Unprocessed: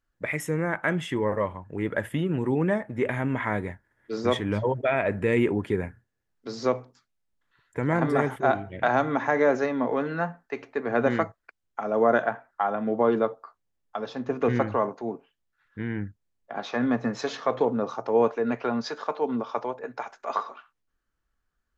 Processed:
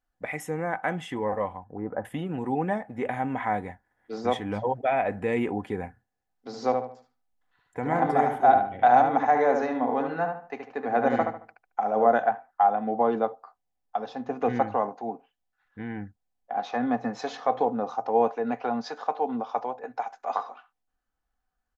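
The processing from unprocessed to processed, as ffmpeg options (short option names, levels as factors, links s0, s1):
-filter_complex "[0:a]asettb=1/sr,asplit=3[s0][s1][s2];[s0]atrim=end=1.644[s3];[s1]atrim=start=1.64:end=2.05,asetpts=PTS-STARTPTS,afade=t=in:d=0.004:c=qsin,afade=t=out:st=0.406:d=0.004:c=qsin,lowpass=f=1300:w=0.5412,lowpass=f=1300:w=1.3066[s4];[s2]atrim=start=2.046[s5];[s3][s4]acrossfade=d=0.004:c1=hsin:c2=qsin[s6];[s6][s5]acrossfade=d=0.004:c1=qsin:c2=hsin,asplit=3[s7][s8][s9];[s7]afade=t=out:st=6.49:d=0.02[s10];[s8]asplit=2[s11][s12];[s12]adelay=74,lowpass=f=3200:p=1,volume=0.562,asplit=2[s13][s14];[s14]adelay=74,lowpass=f=3200:p=1,volume=0.32,asplit=2[s15][s16];[s16]adelay=74,lowpass=f=3200:p=1,volume=0.32,asplit=2[s17][s18];[s18]adelay=74,lowpass=f=3200:p=1,volume=0.32[s19];[s11][s13][s15][s17][s19]amix=inputs=5:normalize=0,afade=t=in:st=6.49:d=0.02,afade=t=out:st=12.07:d=0.02[s20];[s9]afade=t=in:st=12.07:d=0.02[s21];[s10][s20][s21]amix=inputs=3:normalize=0,equalizer=f=770:t=o:w=0.34:g=15,aecho=1:1:4:0.32,volume=0.562"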